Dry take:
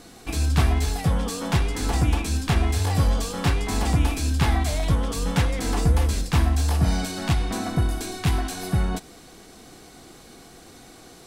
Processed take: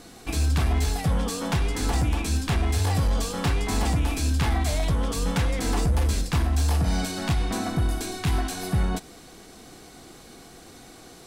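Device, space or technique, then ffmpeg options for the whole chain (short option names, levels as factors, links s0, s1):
limiter into clipper: -af "alimiter=limit=0.211:level=0:latency=1:release=100,asoftclip=type=hard:threshold=0.141"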